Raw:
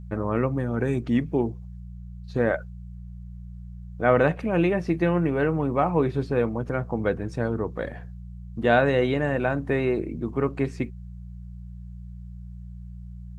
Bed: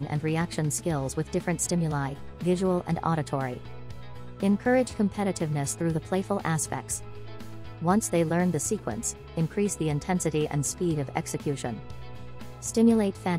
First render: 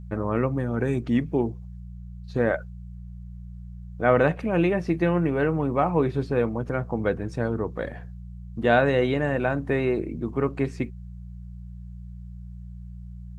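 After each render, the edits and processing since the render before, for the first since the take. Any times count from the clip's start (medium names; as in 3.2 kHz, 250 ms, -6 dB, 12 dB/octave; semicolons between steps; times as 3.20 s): no audible change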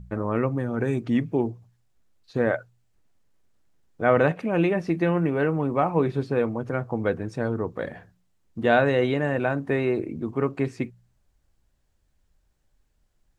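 de-hum 60 Hz, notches 3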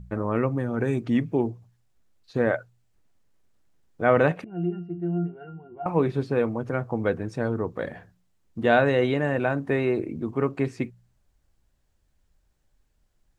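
4.44–5.86 s: pitch-class resonator F, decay 0.24 s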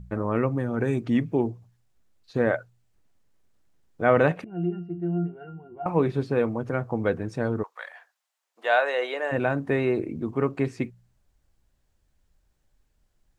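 7.62–9.31 s: high-pass 1 kHz -> 440 Hz 24 dB/octave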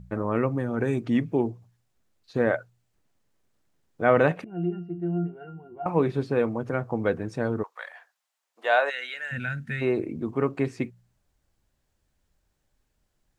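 8.90–9.82 s: time-frequency box 250–1300 Hz -21 dB; bass shelf 62 Hz -8 dB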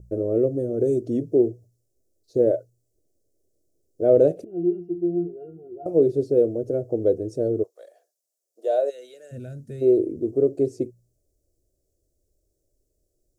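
FFT filter 110 Hz 0 dB, 200 Hz -9 dB, 360 Hz +9 dB, 640 Hz +3 dB, 930 Hz -30 dB, 1.4 kHz -25 dB, 2 kHz -29 dB, 3.5 kHz -15 dB, 5.6 kHz 0 dB, 9.2 kHz +3 dB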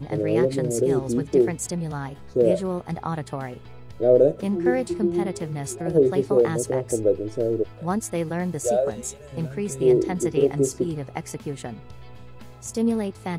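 add bed -2 dB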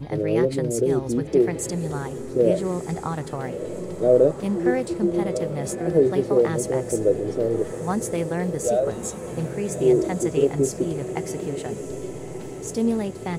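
echo that smears into a reverb 1234 ms, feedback 59%, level -11 dB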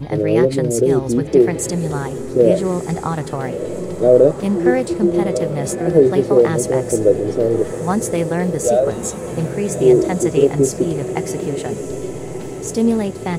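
trim +6.5 dB; peak limiter -1 dBFS, peak gain reduction 1.5 dB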